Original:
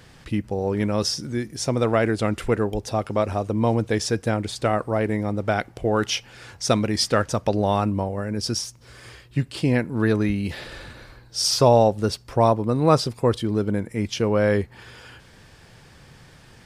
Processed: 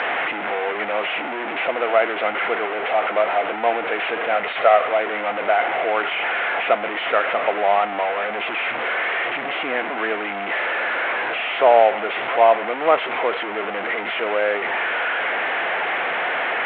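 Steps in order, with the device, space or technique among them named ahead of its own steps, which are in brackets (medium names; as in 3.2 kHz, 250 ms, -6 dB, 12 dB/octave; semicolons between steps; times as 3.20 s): 4.35–4.89 s: comb 1.6 ms, depth 91%; digital answering machine (band-pass 310–3200 Hz; one-bit delta coder 16 kbps, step -19 dBFS; cabinet simulation 440–4300 Hz, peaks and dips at 700 Hz +9 dB, 1.4 kHz +4 dB, 2.1 kHz +6 dB)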